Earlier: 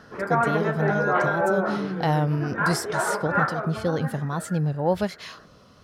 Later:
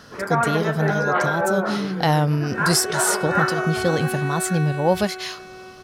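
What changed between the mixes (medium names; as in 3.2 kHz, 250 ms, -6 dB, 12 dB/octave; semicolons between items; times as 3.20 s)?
speech +3.5 dB; second sound: unmuted; master: add treble shelf 2.8 kHz +9.5 dB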